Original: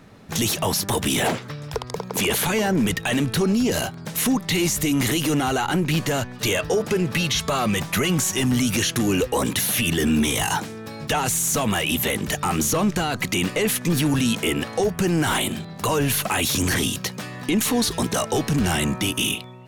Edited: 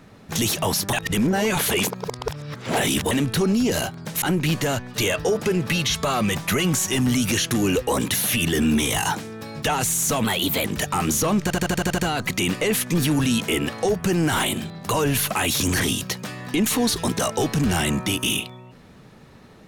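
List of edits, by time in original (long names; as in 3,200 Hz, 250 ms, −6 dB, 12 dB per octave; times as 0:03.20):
0:00.93–0:03.11: reverse
0:04.22–0:05.67: remove
0:11.69–0:12.15: play speed 114%
0:12.93: stutter 0.08 s, 8 plays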